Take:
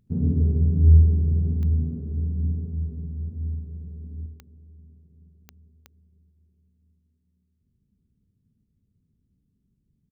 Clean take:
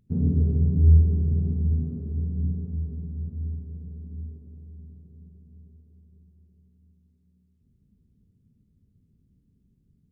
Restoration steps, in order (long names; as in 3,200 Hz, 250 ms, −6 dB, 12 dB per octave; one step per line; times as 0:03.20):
click removal
echo removal 75 ms −10.5 dB
level 0 dB, from 0:04.26 +6.5 dB